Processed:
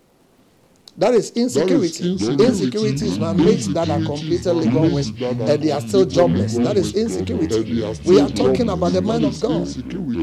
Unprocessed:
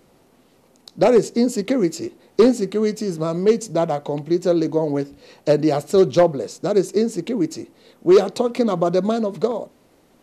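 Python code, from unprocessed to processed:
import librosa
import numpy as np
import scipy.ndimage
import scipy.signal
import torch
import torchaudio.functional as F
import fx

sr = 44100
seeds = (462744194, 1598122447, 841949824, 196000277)

y = fx.dmg_crackle(x, sr, seeds[0], per_s=130.0, level_db=-50.0)
y = fx.echo_pitch(y, sr, ms=197, semitones=-5, count=3, db_per_echo=-3.0)
y = fx.dynamic_eq(y, sr, hz=5300.0, q=0.91, threshold_db=-45.0, ratio=4.0, max_db=5)
y = F.gain(torch.from_numpy(y), -1.0).numpy()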